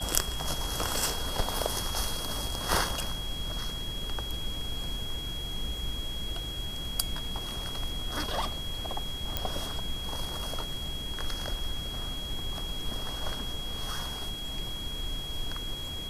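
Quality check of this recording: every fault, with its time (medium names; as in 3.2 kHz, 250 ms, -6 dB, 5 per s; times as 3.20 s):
whine 3.3 kHz -37 dBFS
9.37 s: pop -12 dBFS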